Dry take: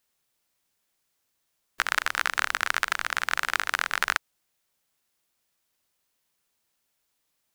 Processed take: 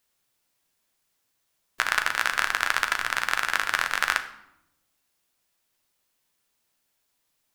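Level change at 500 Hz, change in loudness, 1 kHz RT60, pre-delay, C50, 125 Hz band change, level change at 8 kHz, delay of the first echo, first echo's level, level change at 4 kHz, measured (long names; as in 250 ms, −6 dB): +1.5 dB, +1.5 dB, 0.80 s, 8 ms, 12.0 dB, can't be measured, +1.5 dB, no echo audible, no echo audible, +1.5 dB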